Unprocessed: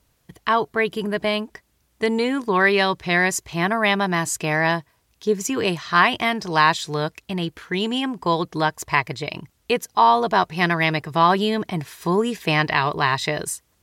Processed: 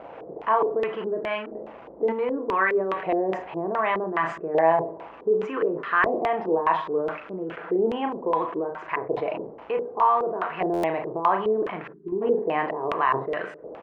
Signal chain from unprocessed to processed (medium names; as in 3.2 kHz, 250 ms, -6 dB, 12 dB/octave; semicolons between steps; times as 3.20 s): jump at every zero crossing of -29 dBFS; graphic EQ 250/500/4000 Hz +7/+10/-7 dB; simulated room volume 2300 m³, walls furnished, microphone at 0.73 m; peak limiter -7.5 dBFS, peak gain reduction 9 dB; doubling 37 ms -6.5 dB; LFO band-pass saw up 0.66 Hz 740–1500 Hz; treble shelf 4.3 kHz -6 dB; LFO low-pass square 2.4 Hz 430–2800 Hz; time-frequency box 11.93–12.22 s, 410–12000 Hz -28 dB; buffer glitch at 10.73 s, samples 512, times 8; decay stretcher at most 110 dB/s